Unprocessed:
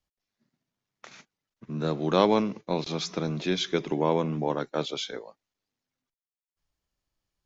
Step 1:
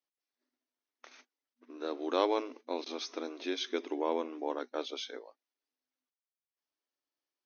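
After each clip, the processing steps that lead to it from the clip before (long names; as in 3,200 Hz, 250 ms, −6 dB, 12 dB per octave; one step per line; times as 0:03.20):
brick-wall band-pass 240–6,500 Hz
level −7 dB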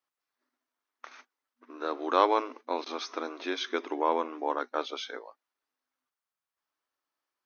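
parametric band 1,200 Hz +11.5 dB 1.5 octaves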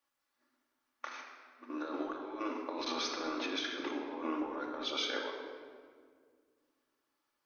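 compressor whose output falls as the input rises −38 dBFS, ratio −1
rectangular room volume 3,000 cubic metres, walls mixed, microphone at 2.4 metres
level −4.5 dB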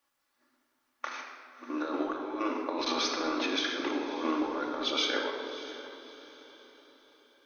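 feedback delay with all-pass diffusion 621 ms, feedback 41%, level −14 dB
level +6 dB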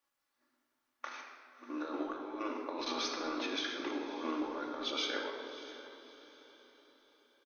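double-tracking delay 17 ms −13 dB
level −6.5 dB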